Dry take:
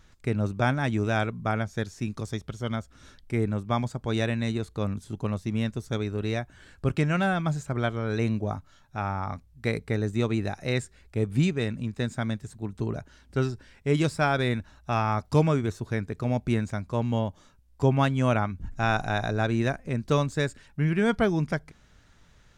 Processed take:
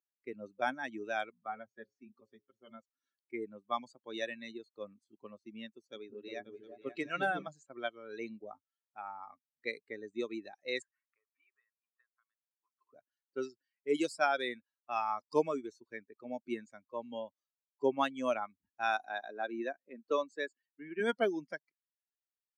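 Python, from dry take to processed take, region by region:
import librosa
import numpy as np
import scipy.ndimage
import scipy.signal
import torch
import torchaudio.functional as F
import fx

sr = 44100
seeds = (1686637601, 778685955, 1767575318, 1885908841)

y = fx.chain(x, sr, fx.high_shelf(hz=3900.0, db=-12.0),
    fx.hum_notches(base_hz=60, count=10),
    fx.notch_comb(f0_hz=160.0), at=(1.46, 2.79))
y = fx.chain(y, sr, fx.peak_eq(hz=64.0, db=-7.5, octaves=1.0),
    fx.echo_opening(ms=178, hz=200, octaves=2, feedback_pct=70, wet_db=0), at=(5.72, 7.48))
y = fx.chain(y, sr, fx.ladder_bandpass(hz=1200.0, resonance_pct=70),
    fx.peak_eq(hz=880.0, db=-10.0, octaves=0.65),
    fx.band_squash(depth_pct=100), at=(10.82, 12.93))
y = fx.chain(y, sr, fx.highpass(hz=170.0, slope=24),
    fx.high_shelf(hz=5100.0, db=-10.5), at=(18.97, 21.0))
y = fx.bin_expand(y, sr, power=2.0)
y = scipy.signal.sosfilt(scipy.signal.butter(4, 300.0, 'highpass', fs=sr, output='sos'), y)
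y = fx.env_lowpass(y, sr, base_hz=2300.0, full_db=-26.5)
y = y * 10.0 ** (-1.5 / 20.0)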